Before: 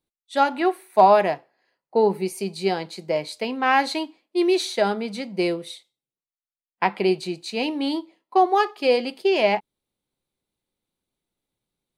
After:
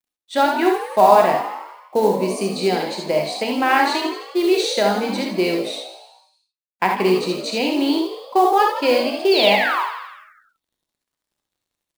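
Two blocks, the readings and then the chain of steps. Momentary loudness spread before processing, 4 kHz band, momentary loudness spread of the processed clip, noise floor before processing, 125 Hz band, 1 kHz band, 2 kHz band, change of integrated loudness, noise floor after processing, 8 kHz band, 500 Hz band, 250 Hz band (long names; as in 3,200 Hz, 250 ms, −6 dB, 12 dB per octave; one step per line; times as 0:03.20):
10 LU, +7.0 dB, 10 LU, below −85 dBFS, +4.0 dB, +3.5 dB, +5.5 dB, +4.0 dB, −85 dBFS, +6.5 dB, +3.5 dB, +4.5 dB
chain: low-pass filter 9,000 Hz 24 dB per octave
in parallel at +2.5 dB: downward compressor 8 to 1, threshold −26 dBFS, peak gain reduction 16 dB
on the sum: sound drawn into the spectrogram fall, 0:09.31–0:09.83, 870–4,800 Hz −21 dBFS
log-companded quantiser 6 bits
on a send: echo with shifted repeats 83 ms, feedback 62%, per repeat +54 Hz, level −10 dB
on the sum: reverb whose tail is shaped and stops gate 90 ms rising, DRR 2.5 dB
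level −2 dB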